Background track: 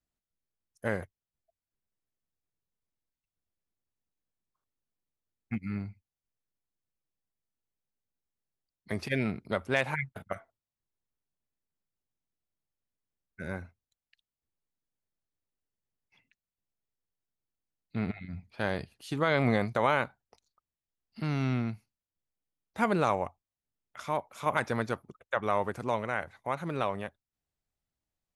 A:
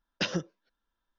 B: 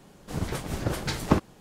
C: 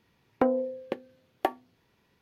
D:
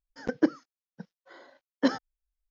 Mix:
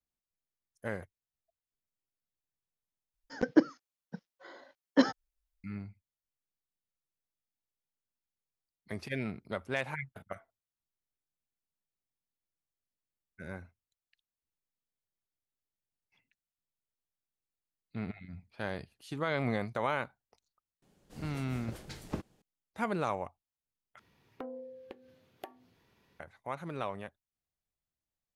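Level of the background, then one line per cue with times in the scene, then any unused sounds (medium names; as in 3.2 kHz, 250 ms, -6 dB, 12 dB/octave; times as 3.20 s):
background track -6 dB
3.14 s: replace with D
20.82 s: add B -15.5 dB + peaking EQ 1.1 kHz -4.5 dB 0.89 oct
23.99 s: replace with C -0.5 dB + compression 2:1, threshold -54 dBFS
not used: A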